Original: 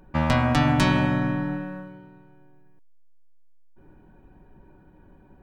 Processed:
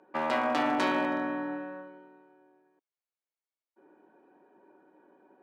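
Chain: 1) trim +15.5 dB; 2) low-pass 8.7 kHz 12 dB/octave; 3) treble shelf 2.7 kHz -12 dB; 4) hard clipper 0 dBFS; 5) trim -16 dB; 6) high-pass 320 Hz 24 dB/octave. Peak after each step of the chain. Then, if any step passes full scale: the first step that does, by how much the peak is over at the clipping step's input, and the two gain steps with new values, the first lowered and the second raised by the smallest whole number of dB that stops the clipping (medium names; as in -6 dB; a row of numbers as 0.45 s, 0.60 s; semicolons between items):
+9.5 dBFS, +9.5 dBFS, +8.0 dBFS, 0.0 dBFS, -16.0 dBFS, -14.5 dBFS; step 1, 8.0 dB; step 1 +7.5 dB, step 5 -8 dB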